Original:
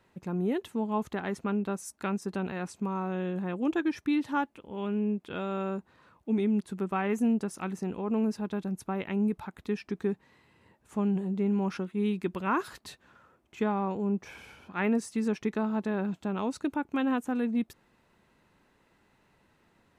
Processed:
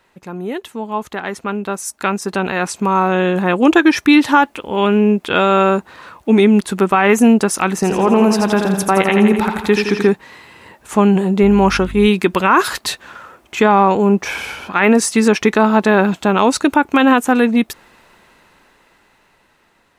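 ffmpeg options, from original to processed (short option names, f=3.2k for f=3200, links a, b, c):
-filter_complex "[0:a]asettb=1/sr,asplit=3[a][b][c];[a]atrim=end=7.744[d];[b]atrim=start=7.74:end=10.09,asetpts=PTS-STARTPTS,afade=t=in:d=0.004:c=qsin,afade=t=out:st=2.346:d=0.004:c=qsin,aecho=1:1:83|166|249|332|415|498|581|664:0.501|0.301|0.18|0.108|0.065|0.039|0.0234|0.014,atrim=end_sample=103635[e];[c]atrim=start=10.086[f];[d][e]acrossfade=d=0.004:c1=hsin:c2=qsin[g];[g][f]acrossfade=d=0.004:c1=qsin:c2=hsin,asettb=1/sr,asplit=3[h][i][j];[h]atrim=end=11.434[k];[i]atrim=start=11.43:end=12.07,asetpts=PTS-STARTPTS,afade=t=in:d=0.004:c=qsin,afade=t=out:st=0.636:d=0.004:c=qsin,aeval=exprs='val(0)+0.00708*(sin(2*PI*50*n/s)+sin(2*PI*2*50*n/s)/2+sin(2*PI*3*50*n/s)/3+sin(2*PI*4*50*n/s)/4+sin(2*PI*5*50*n/s)/5)':c=same[l];[j]atrim=start=12.066[m];[k][l]acrossfade=d=0.004:c1=hsin:c2=qsin[n];[n][m]acrossfade=d=0.004:c1=qsin:c2=hsin,dynaudnorm=f=460:g=11:m=14dB,equalizer=f=120:w=0.33:g=-11,alimiter=level_in=12.5dB:limit=-1dB:release=50:level=0:latency=1,volume=-1dB"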